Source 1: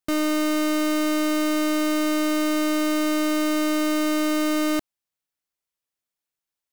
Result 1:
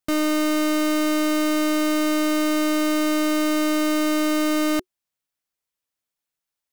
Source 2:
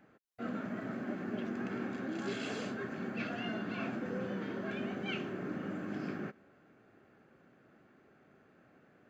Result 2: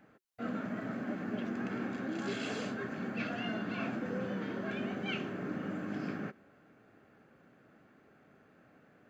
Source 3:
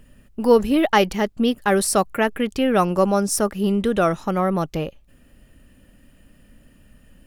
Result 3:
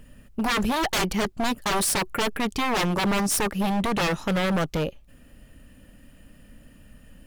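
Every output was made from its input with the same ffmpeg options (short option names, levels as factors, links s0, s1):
-af "bandreject=f=370:w=12,aeval=exprs='0.1*(abs(mod(val(0)/0.1+3,4)-2)-1)':c=same,volume=1.19"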